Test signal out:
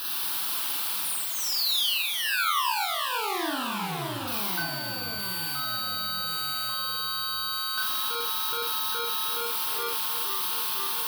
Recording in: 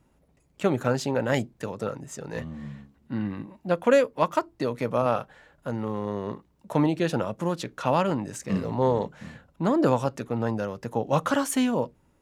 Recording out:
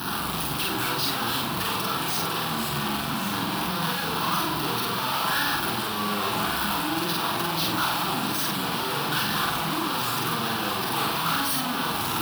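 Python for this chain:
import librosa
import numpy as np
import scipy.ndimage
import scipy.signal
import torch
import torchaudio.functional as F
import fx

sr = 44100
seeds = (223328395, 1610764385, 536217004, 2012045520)

y = np.sign(x) * np.sqrt(np.mean(np.square(x)))
y = scipy.signal.sosfilt(scipy.signal.butter(2, 87.0, 'highpass', fs=sr, output='sos'), y)
y = fx.bass_treble(y, sr, bass_db=-13, treble_db=1)
y = fx.fixed_phaser(y, sr, hz=2100.0, stages=6)
y = y + 10.0 ** (-12.0 / 20.0) * np.pad(y, (int(1145 * sr / 1000.0), 0))[:len(y)]
y = fx.echo_pitch(y, sr, ms=110, semitones=-3, count=3, db_per_echo=-6.0)
y = fx.doubler(y, sr, ms=49.0, db=-3.0)
y = fx.echo_multitap(y, sr, ms=(43, 386), db=(-4.5, -16.5))
y = y * librosa.db_to_amplitude(2.5)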